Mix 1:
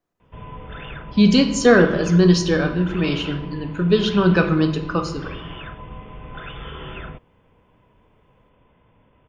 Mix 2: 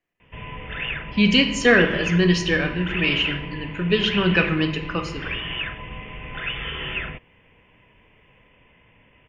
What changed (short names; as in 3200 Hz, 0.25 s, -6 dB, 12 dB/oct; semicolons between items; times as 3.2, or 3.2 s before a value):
speech -4.5 dB; master: add band shelf 2300 Hz +13 dB 1 oct